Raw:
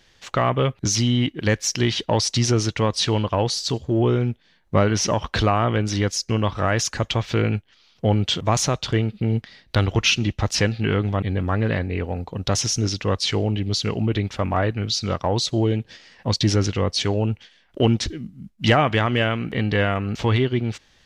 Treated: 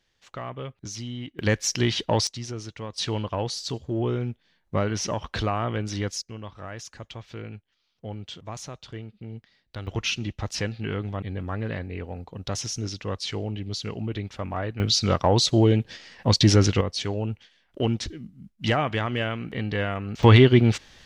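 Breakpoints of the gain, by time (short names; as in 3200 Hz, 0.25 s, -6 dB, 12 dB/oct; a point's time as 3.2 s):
-15 dB
from 1.39 s -2.5 dB
from 2.27 s -15 dB
from 2.98 s -7 dB
from 6.22 s -17 dB
from 9.87 s -8.5 dB
from 14.8 s +2 dB
from 16.81 s -6.5 dB
from 20.23 s +6 dB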